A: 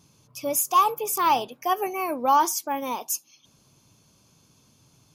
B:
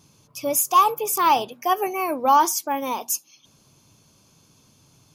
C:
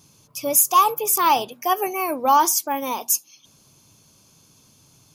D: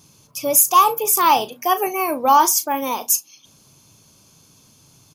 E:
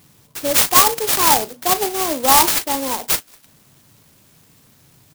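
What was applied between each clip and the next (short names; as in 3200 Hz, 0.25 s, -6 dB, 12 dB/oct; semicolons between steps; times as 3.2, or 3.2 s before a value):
notches 60/120/180/240 Hz; gain +3 dB
high shelf 5300 Hz +6.5 dB
doubler 37 ms -13 dB; gain +2.5 dB
clock jitter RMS 0.15 ms; gain +1 dB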